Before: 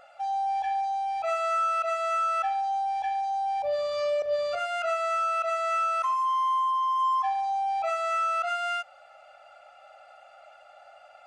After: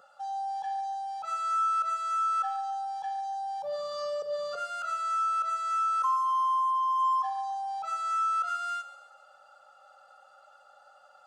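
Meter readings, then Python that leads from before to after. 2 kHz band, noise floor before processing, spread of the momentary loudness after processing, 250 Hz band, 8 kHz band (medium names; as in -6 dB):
-8.5 dB, -54 dBFS, 8 LU, no reading, -1.0 dB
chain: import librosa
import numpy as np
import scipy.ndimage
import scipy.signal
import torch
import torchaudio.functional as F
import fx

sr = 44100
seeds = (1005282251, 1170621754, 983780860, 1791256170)

p1 = scipy.signal.sosfilt(scipy.signal.butter(2, 84.0, 'highpass', fs=sr, output='sos'), x)
p2 = fx.fixed_phaser(p1, sr, hz=450.0, stages=8)
y = p2 + fx.echo_thinned(p2, sr, ms=142, feedback_pct=48, hz=420.0, wet_db=-14.0, dry=0)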